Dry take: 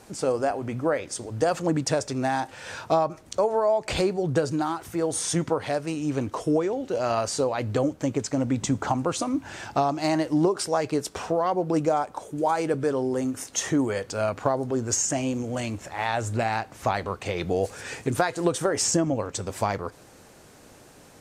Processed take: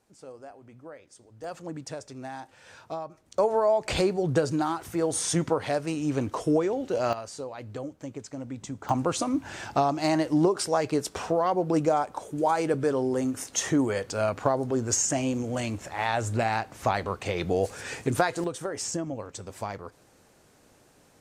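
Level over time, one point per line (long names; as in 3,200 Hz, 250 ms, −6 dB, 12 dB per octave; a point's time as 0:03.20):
−20 dB
from 0:01.44 −13 dB
from 0:03.38 −0.5 dB
from 0:07.13 −12 dB
from 0:08.89 −0.5 dB
from 0:18.44 −8.5 dB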